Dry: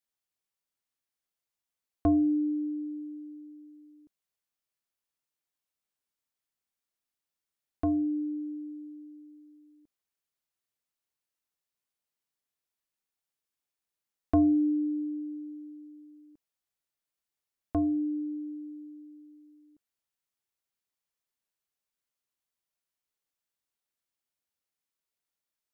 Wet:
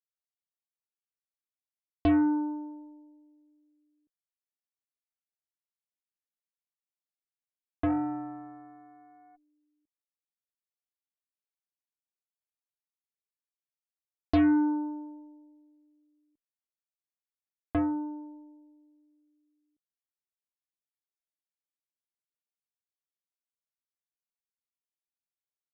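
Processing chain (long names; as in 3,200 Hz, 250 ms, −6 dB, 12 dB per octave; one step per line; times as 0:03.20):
0:07.88–0:09.35: steady tone 730 Hz −39 dBFS
harmonic generator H 4 −44 dB, 7 −18 dB, 8 −39 dB, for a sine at −16.5 dBFS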